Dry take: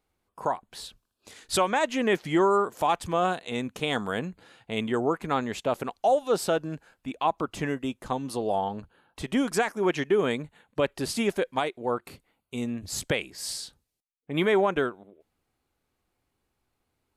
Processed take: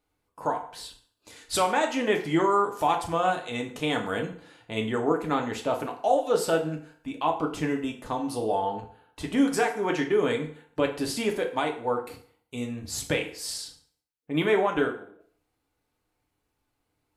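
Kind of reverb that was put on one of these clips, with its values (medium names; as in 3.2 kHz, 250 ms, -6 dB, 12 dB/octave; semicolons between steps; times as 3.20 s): FDN reverb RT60 0.54 s, low-frequency decay 0.8×, high-frequency decay 0.8×, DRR 1.5 dB; trim -2 dB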